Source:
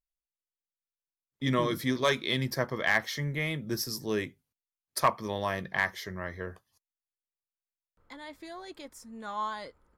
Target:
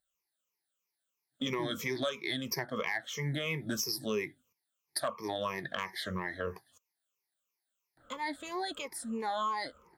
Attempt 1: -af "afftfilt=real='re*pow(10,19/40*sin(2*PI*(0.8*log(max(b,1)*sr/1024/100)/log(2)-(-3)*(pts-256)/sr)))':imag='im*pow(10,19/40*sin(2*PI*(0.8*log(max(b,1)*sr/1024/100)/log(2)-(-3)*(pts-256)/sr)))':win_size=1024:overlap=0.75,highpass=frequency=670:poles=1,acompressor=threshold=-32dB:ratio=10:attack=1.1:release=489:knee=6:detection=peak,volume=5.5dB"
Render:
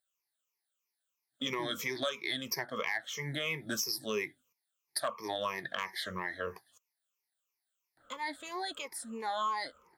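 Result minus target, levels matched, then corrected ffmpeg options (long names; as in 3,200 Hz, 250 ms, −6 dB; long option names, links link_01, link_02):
250 Hz band −4.0 dB
-af "afftfilt=real='re*pow(10,19/40*sin(2*PI*(0.8*log(max(b,1)*sr/1024/100)/log(2)-(-3)*(pts-256)/sr)))':imag='im*pow(10,19/40*sin(2*PI*(0.8*log(max(b,1)*sr/1024/100)/log(2)-(-3)*(pts-256)/sr)))':win_size=1024:overlap=0.75,highpass=frequency=230:poles=1,acompressor=threshold=-32dB:ratio=10:attack=1.1:release=489:knee=6:detection=peak,volume=5.5dB"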